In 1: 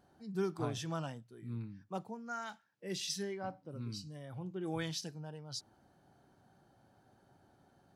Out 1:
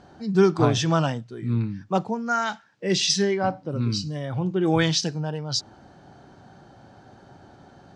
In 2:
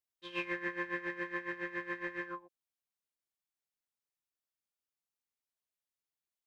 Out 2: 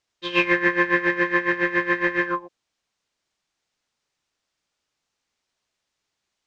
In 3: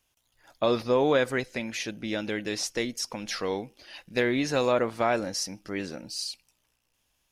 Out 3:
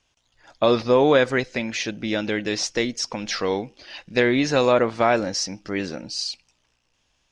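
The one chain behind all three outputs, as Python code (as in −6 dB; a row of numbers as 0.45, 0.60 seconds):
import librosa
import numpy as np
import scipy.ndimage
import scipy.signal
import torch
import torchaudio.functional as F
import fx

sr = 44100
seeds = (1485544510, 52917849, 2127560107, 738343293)

y = scipy.signal.sosfilt(scipy.signal.butter(4, 6900.0, 'lowpass', fs=sr, output='sos'), x)
y = y * 10.0 ** (-6 / 20.0) / np.max(np.abs(y))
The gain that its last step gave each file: +17.5, +18.0, +6.0 decibels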